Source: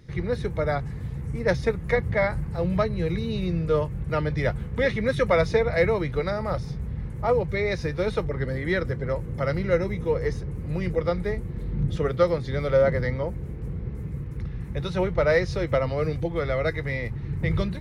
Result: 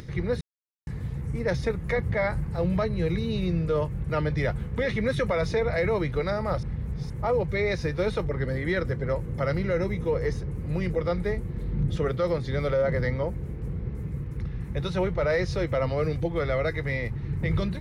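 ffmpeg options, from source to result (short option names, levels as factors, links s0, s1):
-filter_complex "[0:a]asplit=5[s0][s1][s2][s3][s4];[s0]atrim=end=0.41,asetpts=PTS-STARTPTS,afade=t=out:st=0.406:d=0.004:c=hsin[s5];[s1]atrim=start=0.41:end=0.87,asetpts=PTS-STARTPTS,volume=0[s6];[s2]atrim=start=0.87:end=6.632,asetpts=PTS-STARTPTS,afade=t=in:d=0.004:c=hsin[s7];[s3]atrim=start=6.628:end=7.102,asetpts=PTS-STARTPTS,areverse[s8];[s4]atrim=start=7.098[s9];[s5][s6][s7]concat=n=3:v=0:a=1[s10];[s10][s8]acrossfade=d=0.004:c1=hsin:c2=hsin[s11];[s11][s9]acrossfade=d=0.004:c1=hsin:c2=hsin,alimiter=limit=0.141:level=0:latency=1:release=13,acompressor=mode=upward:threshold=0.0178:ratio=2.5"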